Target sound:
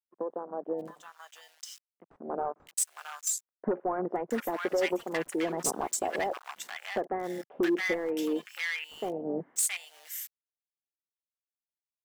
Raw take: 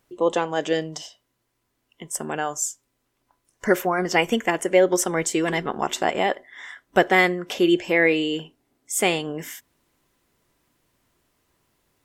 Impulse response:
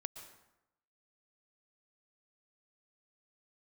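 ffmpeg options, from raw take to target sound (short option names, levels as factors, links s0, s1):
-filter_complex "[0:a]aemphasis=mode=production:type=bsi,acrusher=bits=5:mix=0:aa=0.000001,afwtdn=0.0562,acompressor=threshold=0.0316:ratio=4,highpass=f=160:w=0.5412,highpass=f=160:w=1.3066,dynaudnorm=f=260:g=7:m=2.51,volume=8.91,asoftclip=hard,volume=0.112,acrossover=split=1200[s0][s1];[s1]adelay=670[s2];[s0][s2]amix=inputs=2:normalize=0,adynamicequalizer=threshold=0.00631:dfrequency=1700:dqfactor=0.7:tfrequency=1700:tqfactor=0.7:attack=5:release=100:ratio=0.375:range=1.5:mode=cutabove:tftype=highshelf,volume=0.708"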